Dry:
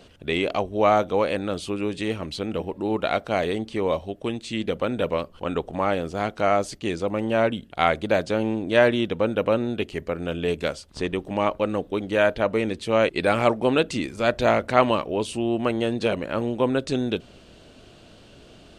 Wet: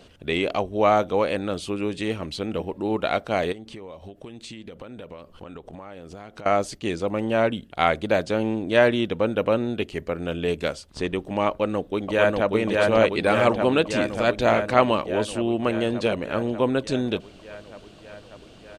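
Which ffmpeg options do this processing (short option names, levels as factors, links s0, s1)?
-filter_complex "[0:a]asettb=1/sr,asplit=3[s0][s1][s2];[s0]atrim=end=3.524[s3];[s1]atrim=start=3.52:end=6.46,asetpts=PTS-STARTPTS,afade=t=in:d=0.004:c=qsin,afade=t=out:st=2.936:d=0.004:c=qsin,acompressor=threshold=0.0178:ratio=16:attack=3.2:release=140:knee=1:detection=peak[s4];[s2]atrim=start=6.456[s5];[s3][s4]acrossfade=d=0.004:c1=hsin:c2=qsin[s6];[s6][s5]acrossfade=d=0.004:c1=qsin:c2=hsin,asplit=2[s7][s8];[s8]afade=t=in:st=11.49:d=0.01,afade=t=out:st=12.53:d=0.01,aecho=0:1:590|1180|1770|2360|2950|3540|4130|4720|5310|5900|6490|7080:0.841395|0.631046|0.473285|0.354964|0.266223|0.199667|0.14975|0.112313|0.0842345|0.0631759|0.0473819|0.0355364[s9];[s7][s9]amix=inputs=2:normalize=0"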